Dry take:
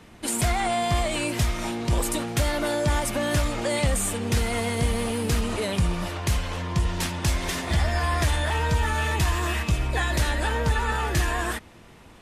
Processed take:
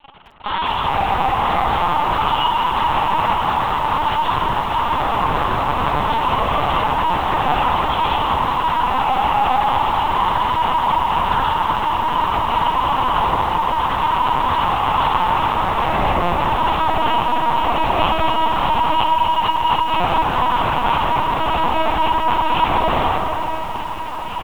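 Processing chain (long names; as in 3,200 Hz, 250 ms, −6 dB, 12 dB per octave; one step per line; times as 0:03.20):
in parallel at −1 dB: speech leveller 0.5 s
on the sum: brickwall limiter −12 dBFS, peak gain reduction 5.5 dB
bit reduction 8 bits
resonant band-pass 2,600 Hz, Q 7.8
fuzz pedal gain 53 dB, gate −52 dBFS
flanger 0.31 Hz, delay 1.7 ms, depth 5.3 ms, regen +30%
formants moved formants −5 semitones
repeating echo 873 ms, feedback 18%, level −10 dB
spring reverb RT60 1.3 s, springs 35 ms, chirp 50 ms, DRR 1.5 dB
wrong playback speed 15 ips tape played at 7.5 ips
linear-prediction vocoder at 8 kHz pitch kept
feedback echo at a low word length 216 ms, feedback 80%, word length 6 bits, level −12.5 dB
level −1.5 dB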